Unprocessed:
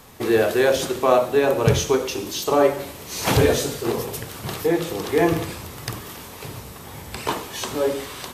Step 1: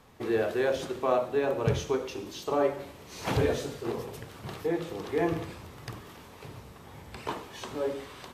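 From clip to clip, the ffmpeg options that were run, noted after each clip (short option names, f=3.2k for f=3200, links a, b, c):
-af "lowpass=f=3k:p=1,volume=-9dB"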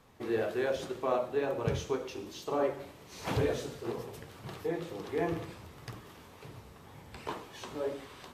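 -af "flanger=delay=6:depth=7.3:regen=-57:speed=2:shape=sinusoidal"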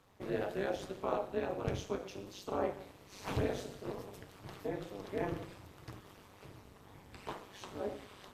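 -af "tremolo=f=200:d=0.889,volume=-1dB"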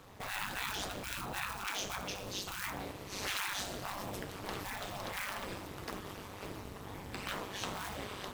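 -af "acrusher=bits=5:mode=log:mix=0:aa=0.000001,afftfilt=real='re*lt(hypot(re,im),0.0178)':imag='im*lt(hypot(re,im),0.0178)':win_size=1024:overlap=0.75,volume=11dB"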